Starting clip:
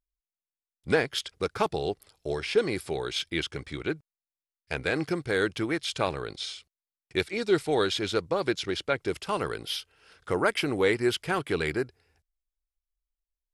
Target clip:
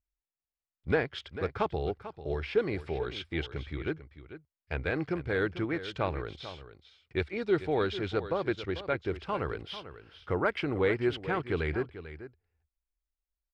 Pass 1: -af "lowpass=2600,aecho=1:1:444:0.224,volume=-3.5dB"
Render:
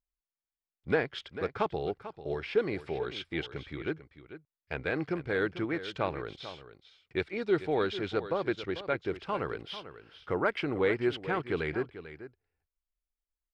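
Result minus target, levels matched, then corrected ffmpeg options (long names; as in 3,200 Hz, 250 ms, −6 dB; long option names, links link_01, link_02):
125 Hz band −4.0 dB
-af "lowpass=2600,equalizer=frequency=72:width=1.6:gain=12,aecho=1:1:444:0.224,volume=-3.5dB"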